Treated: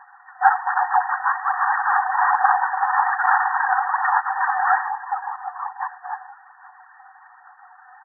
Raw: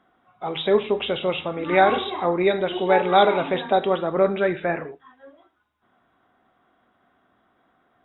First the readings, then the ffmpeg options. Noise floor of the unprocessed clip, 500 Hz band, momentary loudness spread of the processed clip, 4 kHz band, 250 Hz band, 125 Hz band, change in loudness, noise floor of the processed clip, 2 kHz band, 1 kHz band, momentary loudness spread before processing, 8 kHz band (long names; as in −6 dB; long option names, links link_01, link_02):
−67 dBFS, below −15 dB, 12 LU, below −40 dB, below −40 dB, below −40 dB, +1.0 dB, −50 dBFS, +7.5 dB, +6.5 dB, 10 LU, can't be measured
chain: -filter_complex "[0:a]aeval=exprs='max(val(0),0)':channel_layout=same,equalizer=frequency=1300:width_type=o:width=1.2:gain=-11.5,aecho=1:1:6.1:0.95,acontrast=28,asplit=2[link_01][link_02];[link_02]adelay=1399,volume=-17dB,highshelf=frequency=4000:gain=-31.5[link_03];[link_01][link_03]amix=inputs=2:normalize=0,acrusher=bits=10:mix=0:aa=0.000001,asoftclip=type=tanh:threshold=-19dB,apsyclip=26dB,afftfilt=real='hypot(re,im)*cos(2*PI*random(0))':imag='hypot(re,im)*sin(2*PI*random(1))':win_size=512:overlap=0.75,aphaser=in_gain=1:out_gain=1:delay=4:decay=0.39:speed=1.2:type=sinusoidal,afftfilt=real='re*between(b*sr/4096,730,1900)':imag='im*between(b*sr/4096,730,1900)':win_size=4096:overlap=0.75,volume=2.5dB"